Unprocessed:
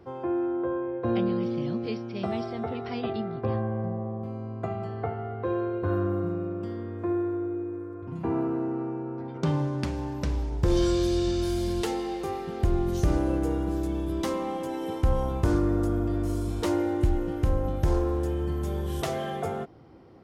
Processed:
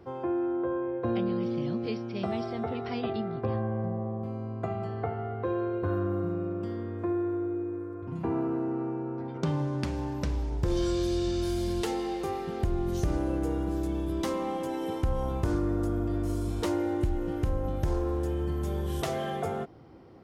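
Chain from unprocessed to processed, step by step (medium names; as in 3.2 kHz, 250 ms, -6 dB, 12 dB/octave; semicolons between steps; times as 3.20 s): compression 2:1, threshold -27 dBFS, peak gain reduction 5.5 dB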